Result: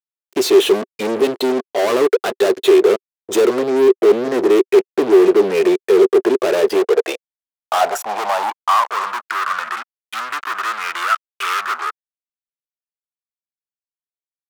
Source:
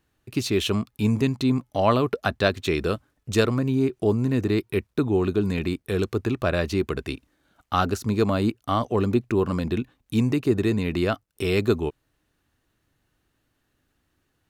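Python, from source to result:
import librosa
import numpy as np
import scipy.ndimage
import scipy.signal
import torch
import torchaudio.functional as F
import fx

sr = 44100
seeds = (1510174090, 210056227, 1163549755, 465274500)

p1 = fx.noise_reduce_blind(x, sr, reduce_db=17)
p2 = fx.low_shelf(p1, sr, hz=140.0, db=-8.0)
p3 = fx.level_steps(p2, sr, step_db=12)
p4 = p2 + (p3 * librosa.db_to_amplitude(-2.5))
p5 = fx.fuzz(p4, sr, gain_db=35.0, gate_db=-41.0)
p6 = fx.filter_sweep_highpass(p5, sr, from_hz=390.0, to_hz=1300.0, start_s=6.54, end_s=9.4, q=5.3)
y = p6 * librosa.db_to_amplitude(-5.5)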